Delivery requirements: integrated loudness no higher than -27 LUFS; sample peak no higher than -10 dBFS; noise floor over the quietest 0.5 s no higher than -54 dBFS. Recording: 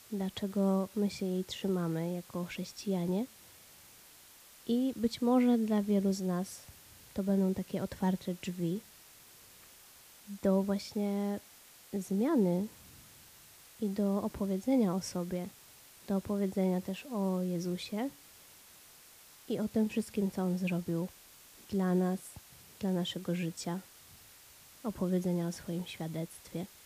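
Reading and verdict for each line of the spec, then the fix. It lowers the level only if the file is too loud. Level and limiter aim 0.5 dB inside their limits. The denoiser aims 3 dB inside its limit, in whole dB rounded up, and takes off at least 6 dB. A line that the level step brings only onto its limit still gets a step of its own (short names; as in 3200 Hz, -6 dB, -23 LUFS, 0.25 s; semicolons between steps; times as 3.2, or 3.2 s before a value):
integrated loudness -34.0 LUFS: OK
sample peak -17.5 dBFS: OK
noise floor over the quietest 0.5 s -57 dBFS: OK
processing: none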